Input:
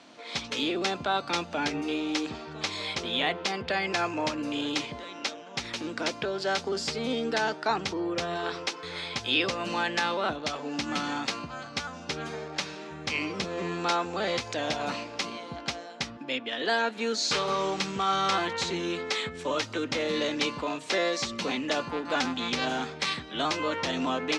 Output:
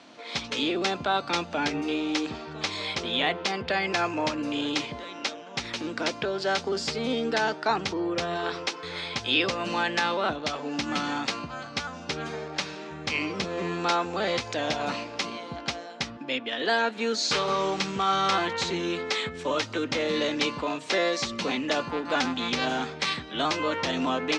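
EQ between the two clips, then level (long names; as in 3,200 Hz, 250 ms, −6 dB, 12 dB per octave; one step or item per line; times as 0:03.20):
Bessel low-pass filter 8,000 Hz, order 2
+2.0 dB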